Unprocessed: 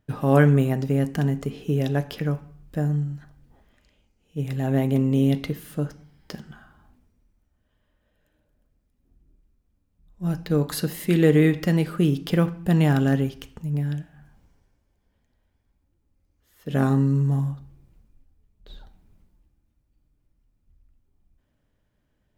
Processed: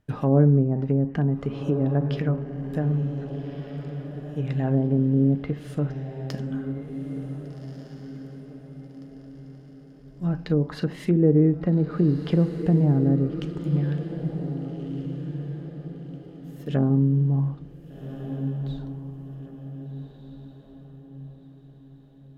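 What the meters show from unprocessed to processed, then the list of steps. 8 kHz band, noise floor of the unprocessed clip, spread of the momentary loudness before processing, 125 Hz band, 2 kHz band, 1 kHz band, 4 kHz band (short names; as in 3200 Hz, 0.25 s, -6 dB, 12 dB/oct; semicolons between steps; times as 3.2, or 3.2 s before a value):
under -10 dB, -71 dBFS, 15 LU, +0.5 dB, -10.0 dB, -5.0 dB, n/a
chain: treble ducked by the level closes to 500 Hz, closed at -17 dBFS; diffused feedback echo 1.564 s, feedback 42%, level -9 dB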